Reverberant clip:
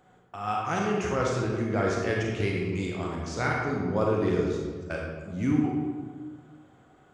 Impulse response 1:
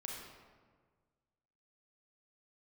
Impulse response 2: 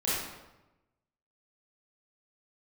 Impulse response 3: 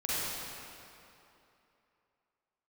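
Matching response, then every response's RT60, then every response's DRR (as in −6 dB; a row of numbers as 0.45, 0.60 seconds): 1; 1.6, 1.0, 2.9 seconds; −2.0, −9.5, −10.0 decibels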